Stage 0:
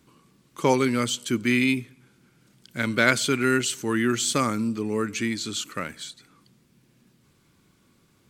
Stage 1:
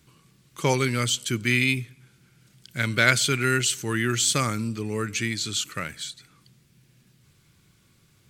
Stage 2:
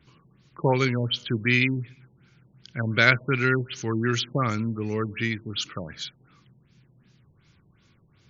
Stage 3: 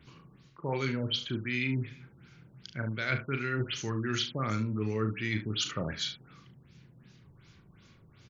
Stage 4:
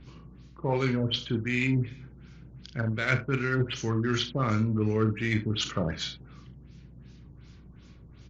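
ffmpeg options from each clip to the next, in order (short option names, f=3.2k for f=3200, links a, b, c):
-af "equalizer=f=125:t=o:w=1:g=4,equalizer=f=250:t=o:w=1:g=-9,equalizer=f=500:t=o:w=1:g=-4,equalizer=f=1k:t=o:w=1:g=-6,volume=3.5dB"
-af "afftfilt=real='re*lt(b*sr/1024,960*pow(7300/960,0.5+0.5*sin(2*PI*2.7*pts/sr)))':imag='im*lt(b*sr/1024,960*pow(7300/960,0.5+0.5*sin(2*PI*2.7*pts/sr)))':win_size=1024:overlap=0.75,volume=1dB"
-af "areverse,acompressor=threshold=-30dB:ratio=16,areverse,aecho=1:1:37|73:0.398|0.237,volume=2dB"
-filter_complex "[0:a]aeval=exprs='val(0)+0.00141*(sin(2*PI*60*n/s)+sin(2*PI*2*60*n/s)/2+sin(2*PI*3*60*n/s)/3+sin(2*PI*4*60*n/s)/4+sin(2*PI*5*60*n/s)/5)':c=same,asplit=2[a][b];[b]adynamicsmooth=sensitivity=3.5:basefreq=1k,volume=-1dB[c];[a][c]amix=inputs=2:normalize=0" -ar 16000 -c:a libvorbis -b:a 48k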